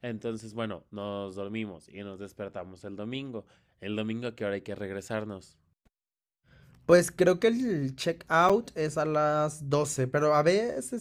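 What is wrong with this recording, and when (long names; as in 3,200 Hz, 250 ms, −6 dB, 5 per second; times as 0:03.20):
0:08.49–0:08.50: drop-out 6.2 ms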